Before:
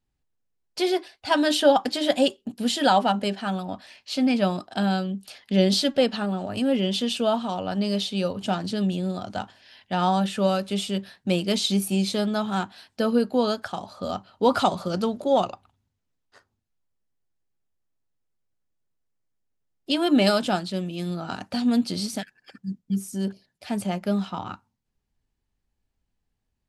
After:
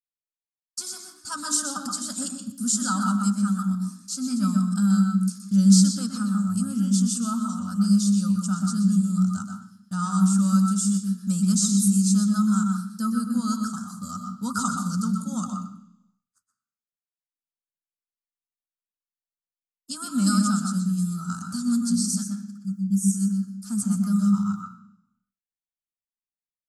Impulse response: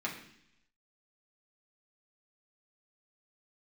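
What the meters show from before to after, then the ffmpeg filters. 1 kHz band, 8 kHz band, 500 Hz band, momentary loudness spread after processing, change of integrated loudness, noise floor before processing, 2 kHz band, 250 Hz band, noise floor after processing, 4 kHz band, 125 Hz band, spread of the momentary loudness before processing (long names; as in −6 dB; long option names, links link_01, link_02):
−6.5 dB, +11.5 dB, below −25 dB, 13 LU, +1.0 dB, −79 dBFS, −8.0 dB, +4.0 dB, below −85 dBFS, −7.5 dB, +6.5 dB, 12 LU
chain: -filter_complex "[0:a]aexciter=amount=6.4:drive=5.4:freq=6500,agate=range=-33dB:threshold=-40dB:ratio=3:detection=peak,firequalizer=gain_entry='entry(130,0);entry(210,8);entry(340,-25);entry(740,-23);entry(1300,7);entry(1900,-23);entry(3100,-18);entry(4800,4);entry(7700,8);entry(12000,2)':delay=0.05:min_phase=1,acrossover=split=7900[link_01][link_02];[link_02]acompressor=threshold=-44dB:ratio=4:attack=1:release=60[link_03];[link_01][link_03]amix=inputs=2:normalize=0,asplit=2[link_04][link_05];[1:a]atrim=start_sample=2205,adelay=122[link_06];[link_05][link_06]afir=irnorm=-1:irlink=0,volume=-6.5dB[link_07];[link_04][link_07]amix=inputs=2:normalize=0,volume=-4dB"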